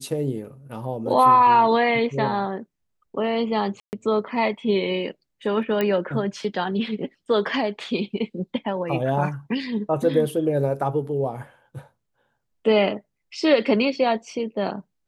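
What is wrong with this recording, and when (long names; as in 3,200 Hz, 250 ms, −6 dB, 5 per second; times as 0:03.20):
0:03.80–0:03.93: drop-out 129 ms
0:05.81: click −11 dBFS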